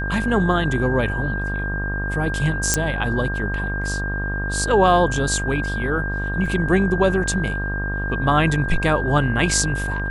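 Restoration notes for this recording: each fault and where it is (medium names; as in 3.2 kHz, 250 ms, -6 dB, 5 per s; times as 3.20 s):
buzz 50 Hz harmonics 26 -26 dBFS
whine 1.6 kHz -26 dBFS
2.74 s: pop -2 dBFS
6.46 s: dropout 3.4 ms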